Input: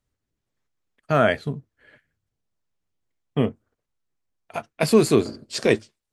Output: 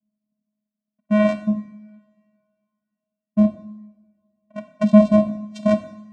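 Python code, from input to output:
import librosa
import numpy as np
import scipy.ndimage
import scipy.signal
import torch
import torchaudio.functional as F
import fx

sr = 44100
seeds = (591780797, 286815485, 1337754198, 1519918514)

y = fx.wiener(x, sr, points=41)
y = fx.vocoder(y, sr, bands=4, carrier='square', carrier_hz=211.0)
y = fx.rev_double_slope(y, sr, seeds[0], early_s=0.81, late_s=2.6, knee_db=-24, drr_db=8.5)
y = y * librosa.db_to_amplitude(4.0)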